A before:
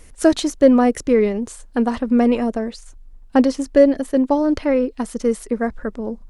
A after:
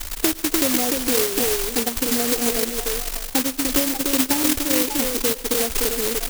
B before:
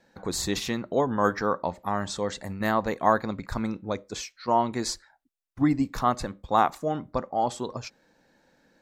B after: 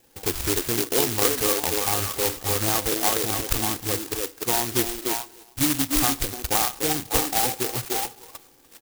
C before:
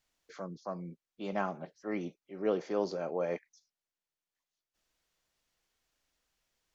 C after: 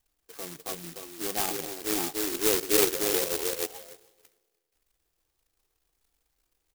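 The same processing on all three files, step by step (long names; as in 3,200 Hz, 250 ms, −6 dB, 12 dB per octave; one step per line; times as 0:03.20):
gate on every frequency bin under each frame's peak −15 dB strong
bass and treble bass +5 dB, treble −13 dB
comb filter 2.5 ms, depth 80%
downward compressor 6 to 1, threshold −22 dBFS
on a send: echo through a band-pass that steps 296 ms, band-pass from 380 Hz, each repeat 1.4 octaves, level −1 dB
on the sum: four-comb reverb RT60 1.7 s, combs from 31 ms, DRR 20 dB
bad sample-rate conversion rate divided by 3×, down filtered, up zero stuff
converter with an unsteady clock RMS 0.14 ms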